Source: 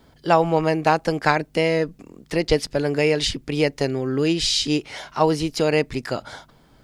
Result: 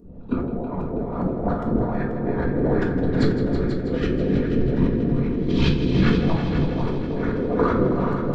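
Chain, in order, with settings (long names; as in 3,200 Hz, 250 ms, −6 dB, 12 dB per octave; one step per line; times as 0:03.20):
feedback delay that plays each chunk backwards 110 ms, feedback 69%, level −2 dB
auto-filter low-pass saw up 3 Hz 390–1,600 Hz
speed change −18%
parametric band 510 Hz −4.5 dB 1.4 octaves
compressor whose output falls as the input rises −27 dBFS, ratio −1
random phases in short frames
bass and treble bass +4 dB, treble +13 dB
notch filter 780 Hz, Q 12
echo machine with several playback heads 162 ms, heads all three, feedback 56%, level −12 dB
rectangular room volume 440 cubic metres, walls furnished, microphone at 1.8 metres
level −3 dB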